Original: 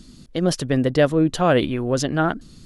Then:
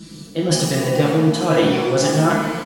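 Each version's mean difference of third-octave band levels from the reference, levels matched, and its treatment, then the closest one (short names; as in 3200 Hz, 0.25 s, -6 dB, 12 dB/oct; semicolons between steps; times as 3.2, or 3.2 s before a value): 11.5 dB: HPF 100 Hz 12 dB/oct; comb 6 ms, depth 97%; reverse; compressor, threshold -21 dBFS, peak gain reduction 12.5 dB; reverse; shimmer reverb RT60 1.2 s, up +7 st, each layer -8 dB, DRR -2.5 dB; gain +3.5 dB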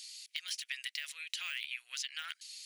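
22.5 dB: de-esser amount 90%; Chebyshev high-pass 2200 Hz, order 4; notch 3500 Hz, Q 24; compressor, threshold -42 dBFS, peak gain reduction 9 dB; gain +6.5 dB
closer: first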